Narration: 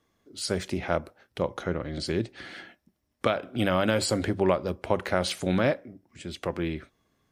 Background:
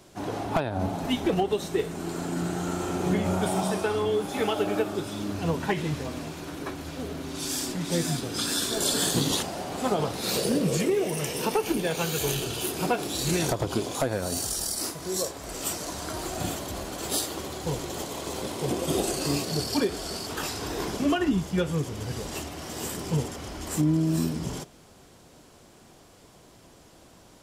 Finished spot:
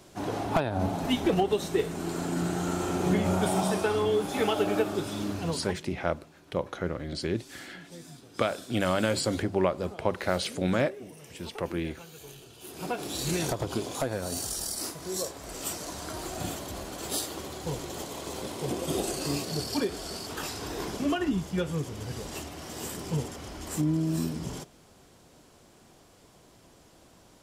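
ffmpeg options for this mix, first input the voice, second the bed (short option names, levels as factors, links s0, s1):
-filter_complex "[0:a]adelay=5150,volume=0.794[s0];[1:a]volume=6.31,afade=t=out:st=5.25:d=0.57:silence=0.105925,afade=t=in:st=12.59:d=0.52:silence=0.158489[s1];[s0][s1]amix=inputs=2:normalize=0"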